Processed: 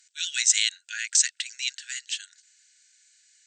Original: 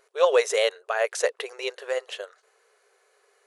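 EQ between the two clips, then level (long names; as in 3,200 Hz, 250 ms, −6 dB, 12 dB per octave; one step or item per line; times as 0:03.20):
linear-phase brick-wall band-pass 1,400–8,500 Hz
spectral tilt +6 dB per octave
high-shelf EQ 2,200 Hz +11 dB
−12.0 dB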